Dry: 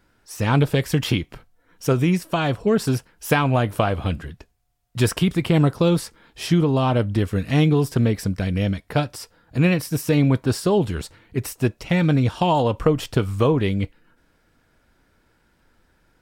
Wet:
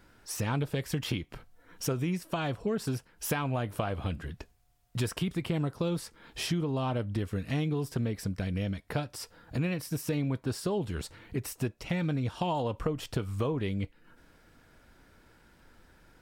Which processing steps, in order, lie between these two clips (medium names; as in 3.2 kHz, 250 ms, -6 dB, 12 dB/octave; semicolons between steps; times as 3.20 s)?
compression 2.5:1, threshold -38 dBFS, peak gain reduction 16.5 dB; trim +2.5 dB